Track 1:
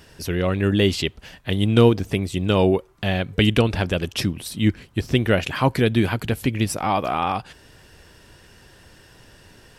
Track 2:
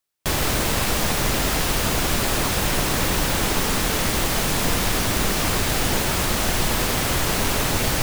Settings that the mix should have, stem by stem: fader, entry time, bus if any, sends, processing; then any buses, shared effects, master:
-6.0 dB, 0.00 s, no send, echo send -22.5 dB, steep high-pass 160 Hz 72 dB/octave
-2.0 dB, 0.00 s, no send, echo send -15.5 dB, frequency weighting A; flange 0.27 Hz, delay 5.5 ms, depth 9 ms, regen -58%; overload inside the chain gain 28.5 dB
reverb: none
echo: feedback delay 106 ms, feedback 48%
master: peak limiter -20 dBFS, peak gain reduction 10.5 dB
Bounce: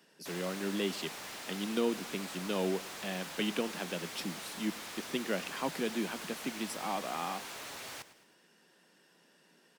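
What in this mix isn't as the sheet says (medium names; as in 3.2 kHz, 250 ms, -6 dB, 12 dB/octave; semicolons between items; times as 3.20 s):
stem 1 -6.0 dB -> -14.5 dB; stem 2 -2.0 dB -> -13.5 dB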